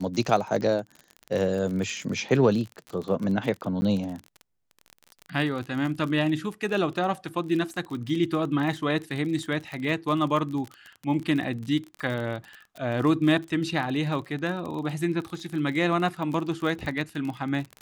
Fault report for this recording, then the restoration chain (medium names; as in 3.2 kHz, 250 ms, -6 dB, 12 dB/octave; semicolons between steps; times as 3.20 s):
crackle 34 per s -31 dBFS
3.81–3.82 s: dropout 10 ms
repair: de-click; interpolate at 3.81 s, 10 ms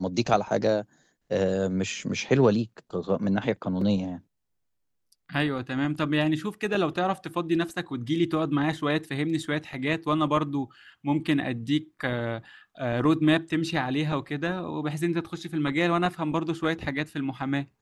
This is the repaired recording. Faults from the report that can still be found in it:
nothing left